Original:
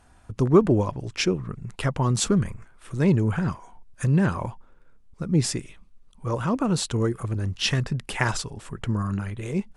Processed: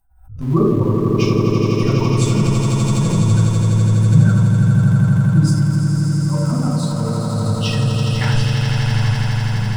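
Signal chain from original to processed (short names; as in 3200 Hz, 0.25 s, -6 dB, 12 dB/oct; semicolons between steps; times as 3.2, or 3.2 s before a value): per-bin expansion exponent 2; swelling echo 83 ms, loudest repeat 8, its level -7 dB; shoebox room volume 1000 m³, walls furnished, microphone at 9.6 m; in parallel at -10 dB: sample gate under -17.5 dBFS; on the sum: backwards sustainer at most 99 dB/s; gain -10 dB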